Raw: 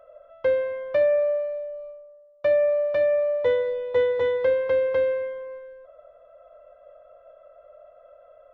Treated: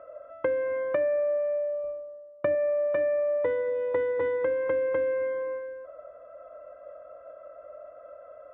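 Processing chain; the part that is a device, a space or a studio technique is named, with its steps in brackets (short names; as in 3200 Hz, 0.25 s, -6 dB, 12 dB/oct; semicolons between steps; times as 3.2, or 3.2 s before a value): 1.84–2.55 low shelf 220 Hz +11 dB; bass amplifier (compressor 5:1, threshold -30 dBFS, peak gain reduction 12.5 dB; speaker cabinet 74–2200 Hz, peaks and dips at 110 Hz -4 dB, 310 Hz +10 dB, 470 Hz -3 dB, 720 Hz -5 dB); gain +6.5 dB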